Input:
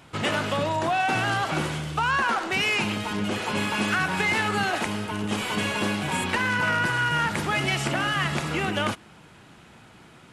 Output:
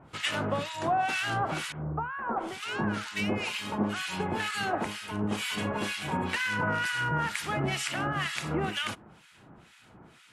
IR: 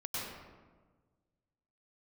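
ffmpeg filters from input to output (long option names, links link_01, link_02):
-filter_complex "[0:a]asettb=1/sr,asplit=3[link_01][link_02][link_03];[link_01]atrim=end=1.724[link_04];[link_02]atrim=start=1.72:end=4.4,asetpts=PTS-STARTPTS,afade=type=in:duration=0.004:curve=qsin,afade=type=out:start_time=2.676:duration=0.004:curve=qsin,acrossover=split=1400[link_05][link_06];[link_06]adelay=650[link_07];[link_05][link_07]amix=inputs=2:normalize=0,atrim=end_sample=118188[link_08];[link_03]atrim=start=4.396[link_09];[link_04][link_08]acrossfade=duration=0.004:curve1=hsin:curve2=qsin[link_10];[link_10][link_09]acrossfade=duration=0.004:curve1=qsin:curve2=hsin,acrossover=split=1400[link_11][link_12];[link_11]aeval=exprs='val(0)*(1-1/2+1/2*cos(2*PI*2.1*n/s))':channel_layout=same[link_13];[link_12]aeval=exprs='val(0)*(1-1/2-1/2*cos(2*PI*2.1*n/s))':channel_layout=same[link_14];[link_13][link_14]amix=inputs=2:normalize=0"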